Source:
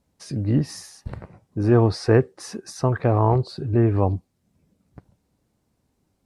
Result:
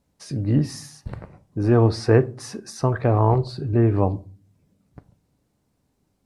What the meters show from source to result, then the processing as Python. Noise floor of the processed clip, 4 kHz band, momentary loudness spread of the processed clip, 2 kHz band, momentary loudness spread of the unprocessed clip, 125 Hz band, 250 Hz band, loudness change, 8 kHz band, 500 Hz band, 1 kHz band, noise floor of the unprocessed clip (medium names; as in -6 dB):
-71 dBFS, 0.0 dB, 19 LU, 0.0 dB, 19 LU, +0.5 dB, 0.0 dB, +0.5 dB, 0.0 dB, 0.0 dB, 0.0 dB, -72 dBFS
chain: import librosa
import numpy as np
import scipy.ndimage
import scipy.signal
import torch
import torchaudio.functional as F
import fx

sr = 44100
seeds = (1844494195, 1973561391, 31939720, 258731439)

y = fx.room_shoebox(x, sr, seeds[0], volume_m3=270.0, walls='furnished', distance_m=0.34)